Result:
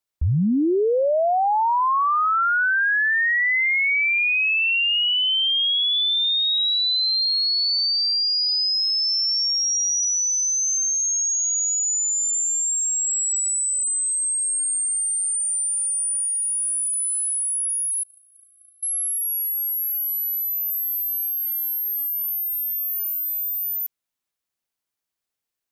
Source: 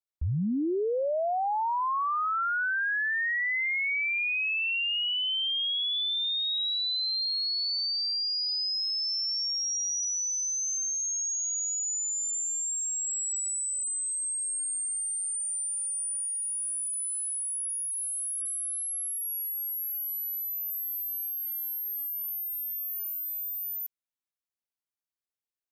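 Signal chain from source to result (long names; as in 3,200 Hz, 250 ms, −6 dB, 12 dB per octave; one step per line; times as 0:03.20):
0:18.03–0:18.83: gate on every frequency bin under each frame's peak −15 dB weak
level +8.5 dB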